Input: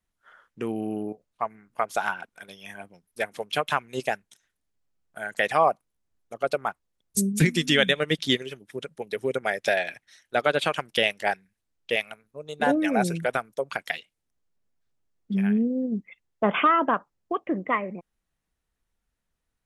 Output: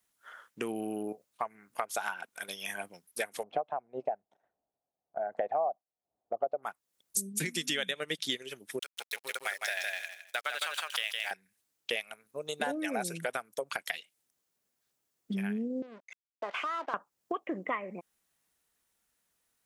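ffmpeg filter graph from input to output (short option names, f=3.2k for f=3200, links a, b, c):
-filter_complex "[0:a]asettb=1/sr,asplit=3[a][b][c];[a]atrim=end=3.434[d];[b]atrim=start=3.43:end=6.63,asetpts=PTS-STARTPTS,afade=t=in:d=0.004:c=qsin,afade=t=out:st=3.196:d=0.004:c=qsin,tremolo=f=1:d=0.59,lowpass=f=710:t=q:w=4.9[e];[c]atrim=start=6.626[f];[d][e]acrossfade=d=0.004:c1=hsin:c2=qsin[g];[g][f]acrossfade=d=0.004:c1=qsin:c2=hsin,asettb=1/sr,asplit=3[h][i][j];[h]atrim=end=8.794[k];[i]atrim=start=8.79:end=11.31,asetpts=PTS-STARTPTS,afade=t=in:d=0.004:c=qsin,afade=t=out:st=2.516:d=0.004:c=qsin,highpass=1.2k,aeval=exprs='sgn(val(0))*max(abs(val(0))-0.00473,0)':c=same,aecho=1:1:160|320|480:0.708|0.113|0.0181,atrim=end_sample=111132[l];[j]atrim=start=11.306[m];[k][l]acrossfade=d=0.004:c1=hsin:c2=qsin[n];[n][m]acrossfade=d=0.004:c1=qsin:c2=hsin,asettb=1/sr,asplit=3[o][p][q];[o]atrim=end=15.824[r];[p]atrim=start=15.82:end=16.94,asetpts=PTS-STARTPTS,afade=t=in:d=0.004:c=qsin,afade=t=out:st=1.116:d=0.004:c=qsin,acompressor=threshold=-39dB:ratio=2:attack=3.2:release=140:knee=1:detection=peak,aeval=exprs='sgn(val(0))*max(abs(val(0))-0.00447,0)':c=same,highpass=440,lowpass=4.2k[s];[q]atrim=start=16.936[t];[r][s]acrossfade=d=0.004:c1=hsin:c2=qsin[u];[u][t]acrossfade=d=0.004:c1=qsin:c2=hsin,highpass=f=370:p=1,highshelf=f=6.1k:g=11,acompressor=threshold=-36dB:ratio=4,volume=3.5dB"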